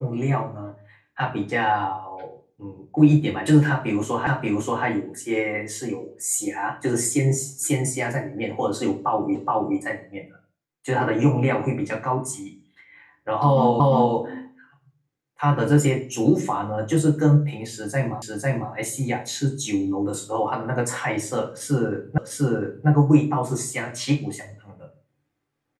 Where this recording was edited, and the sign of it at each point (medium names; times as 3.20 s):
4.27 s: repeat of the last 0.58 s
9.35 s: repeat of the last 0.42 s
13.80 s: repeat of the last 0.35 s
18.22 s: repeat of the last 0.5 s
22.18 s: repeat of the last 0.7 s